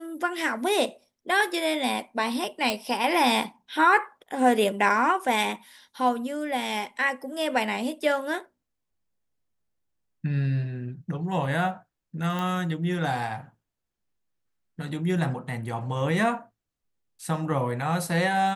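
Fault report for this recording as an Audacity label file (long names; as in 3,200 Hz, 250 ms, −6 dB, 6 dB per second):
2.700000	2.700000	click −10 dBFS
12.390000	12.390000	click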